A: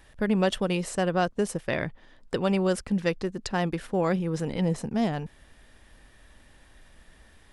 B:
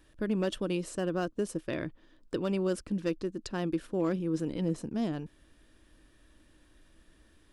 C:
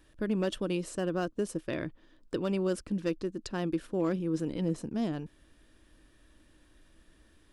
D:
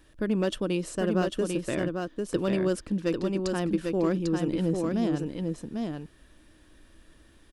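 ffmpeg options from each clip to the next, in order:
-af "equalizer=f=315:t=o:w=0.33:g=12,equalizer=f=800:t=o:w=0.33:g=-8,equalizer=f=2k:t=o:w=0.33:g=-6,asoftclip=type=hard:threshold=-13.5dB,volume=-7dB"
-af anull
-af "aecho=1:1:797:0.631,volume=3.5dB"

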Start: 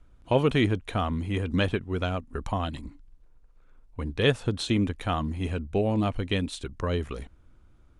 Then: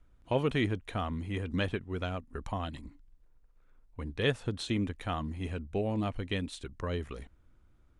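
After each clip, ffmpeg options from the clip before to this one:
-af "equalizer=f=1.9k:t=o:w=0.36:g=3,volume=-6.5dB"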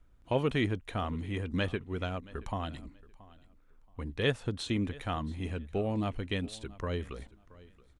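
-af "aecho=1:1:676|1352:0.0891|0.0196"

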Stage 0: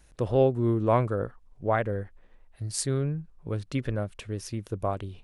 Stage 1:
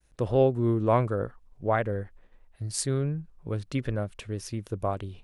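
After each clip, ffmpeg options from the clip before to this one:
-af "agate=range=-33dB:threshold=-51dB:ratio=3:detection=peak"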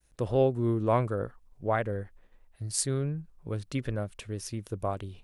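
-af "highshelf=f=6.3k:g=6.5,volume=-2.5dB"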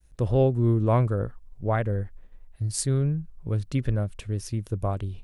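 -af "lowshelf=f=180:g=12"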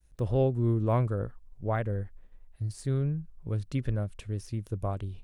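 -af "deesser=0.9,volume=-4.5dB"

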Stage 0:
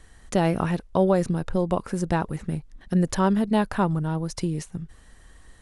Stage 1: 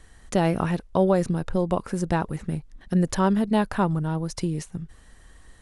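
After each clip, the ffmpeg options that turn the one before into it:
-af anull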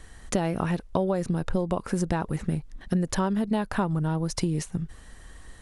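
-af "acompressor=threshold=-26dB:ratio=6,volume=4dB"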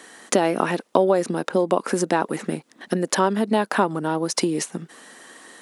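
-af "highpass=f=250:w=0.5412,highpass=f=250:w=1.3066,volume=9dB"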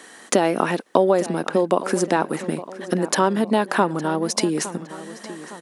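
-filter_complex "[0:a]asplit=2[a][b];[b]adelay=862,lowpass=f=3.8k:p=1,volume=-15dB,asplit=2[c][d];[d]adelay=862,lowpass=f=3.8k:p=1,volume=0.51,asplit=2[e][f];[f]adelay=862,lowpass=f=3.8k:p=1,volume=0.51,asplit=2[g][h];[h]adelay=862,lowpass=f=3.8k:p=1,volume=0.51,asplit=2[i][j];[j]adelay=862,lowpass=f=3.8k:p=1,volume=0.51[k];[a][c][e][g][i][k]amix=inputs=6:normalize=0,volume=1dB"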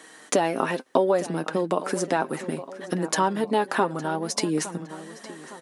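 -af "flanger=delay=6.3:depth=1.4:regen=42:speed=0.63:shape=sinusoidal"

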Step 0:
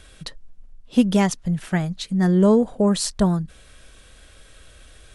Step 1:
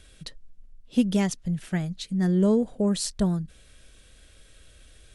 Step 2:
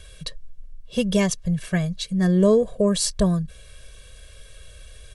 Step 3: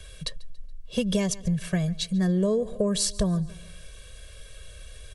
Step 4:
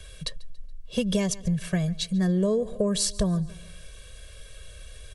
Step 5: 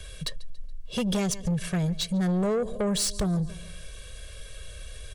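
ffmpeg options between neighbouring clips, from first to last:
-af "equalizer=f=1k:t=o:w=1.4:g=-7,volume=-4.5dB"
-af "aecho=1:1:1.8:0.87,volume=4dB"
-filter_complex "[0:a]aecho=1:1:141|282|423:0.0708|0.0311|0.0137,acrossover=split=250|950|2200[a][b][c][d];[c]alimiter=level_in=7dB:limit=-24dB:level=0:latency=1:release=396,volume=-7dB[e];[a][b][e][d]amix=inputs=4:normalize=0,acompressor=threshold=-21dB:ratio=5"
-af anull
-af "asoftclip=type=tanh:threshold=-25dB,volume=3dB"

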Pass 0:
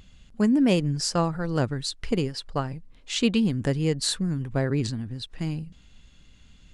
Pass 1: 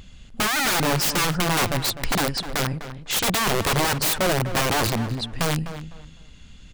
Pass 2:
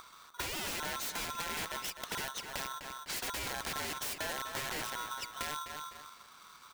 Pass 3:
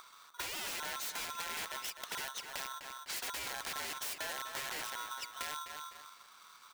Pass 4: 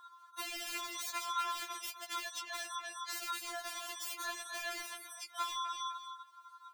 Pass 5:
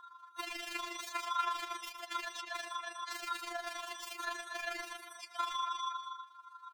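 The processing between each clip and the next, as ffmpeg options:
-filter_complex "[0:a]aeval=exprs='(mod(15*val(0)+1,2)-1)/15':c=same,asplit=2[a][b];[b]adelay=252,lowpass=f=2.6k:p=1,volume=-11dB,asplit=2[c][d];[d]adelay=252,lowpass=f=2.6k:p=1,volume=0.25,asplit=2[e][f];[f]adelay=252,lowpass=f=2.6k:p=1,volume=0.25[g];[a][c][e][g]amix=inputs=4:normalize=0,volume=7dB"
-af "highpass=80,acompressor=threshold=-35dB:ratio=3,aeval=exprs='val(0)*sgn(sin(2*PI*1200*n/s))':c=same,volume=-5dB"
-af "lowshelf=f=360:g=-11.5,volume=-1.5dB"
-af "afftdn=nr=18:nf=-53,acompressor=threshold=-47dB:ratio=2.5,afftfilt=real='re*4*eq(mod(b,16),0)':imag='im*4*eq(mod(b,16),0)':win_size=2048:overlap=0.75,volume=7.5dB"
-af "lowpass=f=2.8k:p=1,tremolo=f=25:d=0.571,aecho=1:1:110:0.282,volume=5dB"

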